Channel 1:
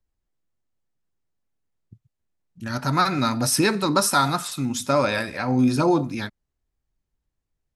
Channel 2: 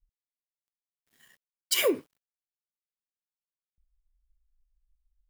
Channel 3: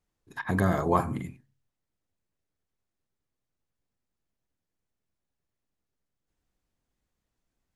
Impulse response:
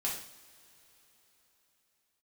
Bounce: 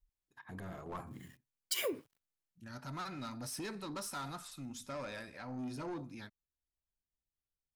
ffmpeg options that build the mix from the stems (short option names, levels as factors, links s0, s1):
-filter_complex "[0:a]asoftclip=type=tanh:threshold=0.119,volume=0.119[s0];[1:a]acompressor=threshold=0.0282:ratio=5,volume=0.75[s1];[2:a]agate=range=0.0224:threshold=0.00501:ratio=3:detection=peak,dynaudnorm=f=420:g=7:m=3.76,aeval=exprs='clip(val(0),-1,0.0794)':c=same,volume=0.106[s2];[s0][s1][s2]amix=inputs=3:normalize=0"